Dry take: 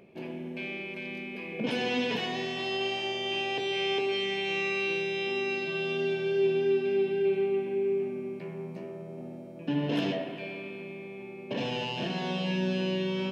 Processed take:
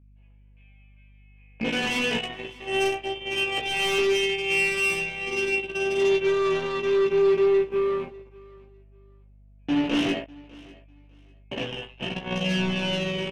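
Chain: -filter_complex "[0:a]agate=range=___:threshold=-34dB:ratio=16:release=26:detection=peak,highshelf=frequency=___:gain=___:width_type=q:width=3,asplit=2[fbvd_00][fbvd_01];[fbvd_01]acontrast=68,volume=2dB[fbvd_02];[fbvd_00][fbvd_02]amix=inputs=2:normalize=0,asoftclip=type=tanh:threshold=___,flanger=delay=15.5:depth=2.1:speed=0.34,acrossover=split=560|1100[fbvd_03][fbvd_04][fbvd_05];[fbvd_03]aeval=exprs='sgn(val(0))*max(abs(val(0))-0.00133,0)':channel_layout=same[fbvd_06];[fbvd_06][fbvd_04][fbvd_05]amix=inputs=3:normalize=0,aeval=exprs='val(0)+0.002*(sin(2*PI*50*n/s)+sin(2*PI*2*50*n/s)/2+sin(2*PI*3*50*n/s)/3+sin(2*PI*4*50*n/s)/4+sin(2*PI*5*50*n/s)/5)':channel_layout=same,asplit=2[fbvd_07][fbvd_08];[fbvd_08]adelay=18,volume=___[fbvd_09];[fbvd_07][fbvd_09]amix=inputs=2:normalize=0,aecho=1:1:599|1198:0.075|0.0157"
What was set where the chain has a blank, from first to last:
-37dB, 3600, -7.5, -18.5dB, -8dB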